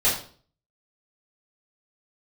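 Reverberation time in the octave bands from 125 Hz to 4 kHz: 0.60, 0.55, 0.50, 0.45, 0.40, 0.40 s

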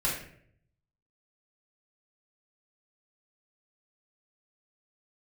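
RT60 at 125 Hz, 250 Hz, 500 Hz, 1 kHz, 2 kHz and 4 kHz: 1.1, 0.80, 0.70, 0.55, 0.60, 0.45 s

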